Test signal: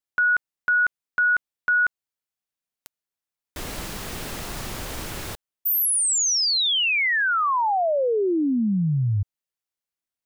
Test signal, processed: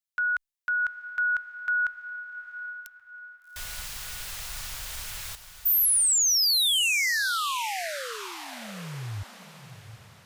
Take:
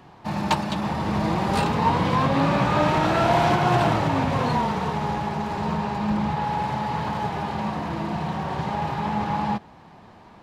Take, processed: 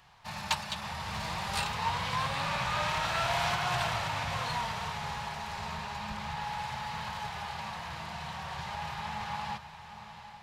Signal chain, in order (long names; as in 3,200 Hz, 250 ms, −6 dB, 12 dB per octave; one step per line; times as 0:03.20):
guitar amp tone stack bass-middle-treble 10-0-10
feedback delay with all-pass diffusion 757 ms, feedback 41%, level −11 dB